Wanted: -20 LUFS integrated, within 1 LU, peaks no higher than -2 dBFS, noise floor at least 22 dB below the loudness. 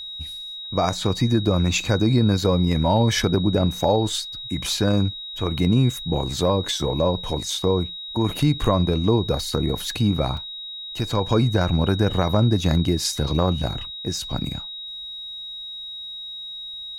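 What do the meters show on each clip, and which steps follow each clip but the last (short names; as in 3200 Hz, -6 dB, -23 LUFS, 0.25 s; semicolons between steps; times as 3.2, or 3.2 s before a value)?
dropouts 1; longest dropout 3.4 ms; steady tone 3800 Hz; tone level -32 dBFS; loudness -22.5 LUFS; peak -6.5 dBFS; loudness target -20.0 LUFS
-> interpolate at 10.37, 3.4 ms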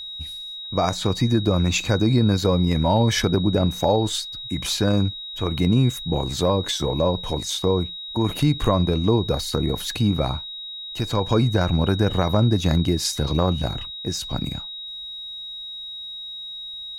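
dropouts 0; steady tone 3800 Hz; tone level -32 dBFS
-> notch 3800 Hz, Q 30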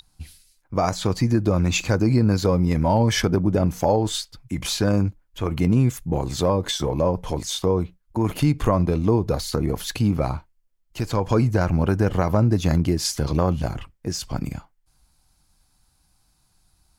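steady tone none; loudness -22.5 LUFS; peak -6.5 dBFS; loudness target -20.0 LUFS
-> gain +2.5 dB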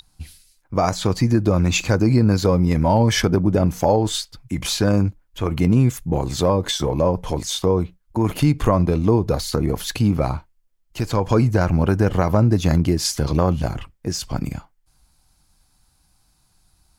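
loudness -20.0 LUFS; peak -4.0 dBFS; noise floor -63 dBFS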